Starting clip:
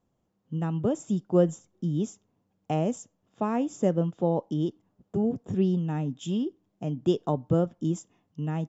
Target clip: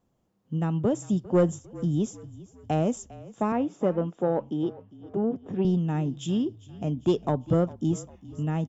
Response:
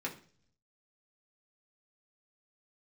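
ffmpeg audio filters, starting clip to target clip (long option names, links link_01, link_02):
-filter_complex "[0:a]asoftclip=type=tanh:threshold=-15.5dB,asettb=1/sr,asplit=3[link_01][link_02][link_03];[link_01]atrim=end=3.524[link_04];[link_02]atrim=start=3.52:end=5.65,asetpts=PTS-STARTPTS,afade=type=in:duration=0.004:curve=qsin,afade=type=out:start_time=2.126:duration=0.004:curve=qsin,highpass=220,lowpass=2900[link_05];[link_03]atrim=start=5.646[link_06];[link_04][link_05]acrossfade=duration=0.004:curve1=hsin:curve2=qsin[link_07];[link_07][link_06]acrossfade=duration=0.004:curve1=qsin:curve2=hsin,asplit=5[link_08][link_09][link_10][link_11][link_12];[link_09]adelay=401,afreqshift=-33,volume=-19dB[link_13];[link_10]adelay=802,afreqshift=-66,volume=-25.2dB[link_14];[link_11]adelay=1203,afreqshift=-99,volume=-31.4dB[link_15];[link_12]adelay=1604,afreqshift=-132,volume=-37.6dB[link_16];[link_08][link_13][link_14][link_15][link_16]amix=inputs=5:normalize=0,volume=2.5dB"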